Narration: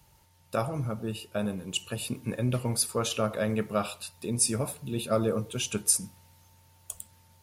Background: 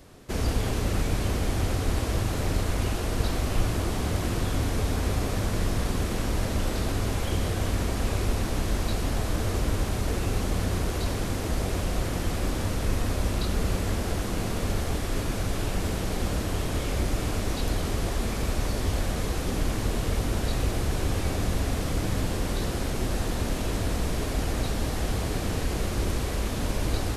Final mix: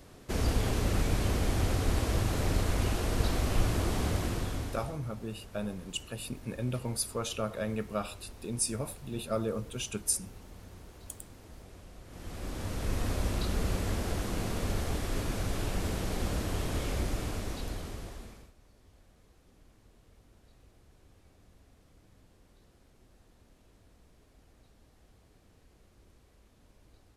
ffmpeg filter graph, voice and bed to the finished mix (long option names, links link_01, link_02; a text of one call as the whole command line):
ffmpeg -i stem1.wav -i stem2.wav -filter_complex "[0:a]adelay=4200,volume=-5.5dB[link_01];[1:a]volume=16dB,afade=type=out:start_time=4.04:duration=0.95:silence=0.0944061,afade=type=in:start_time=12.06:duration=1.01:silence=0.11885,afade=type=out:start_time=16.86:duration=1.66:silence=0.0334965[link_02];[link_01][link_02]amix=inputs=2:normalize=0" out.wav